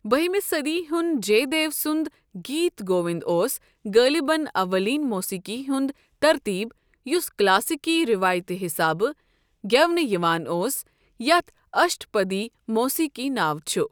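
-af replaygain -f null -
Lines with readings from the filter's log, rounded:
track_gain = +2.6 dB
track_peak = 0.400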